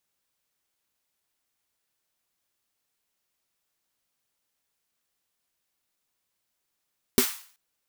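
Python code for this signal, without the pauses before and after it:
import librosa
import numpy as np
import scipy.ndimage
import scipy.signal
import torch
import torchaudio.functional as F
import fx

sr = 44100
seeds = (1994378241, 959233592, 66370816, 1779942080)

y = fx.drum_snare(sr, seeds[0], length_s=0.38, hz=250.0, second_hz=390.0, noise_db=-5.0, noise_from_hz=910.0, decay_s=0.1, noise_decay_s=0.47)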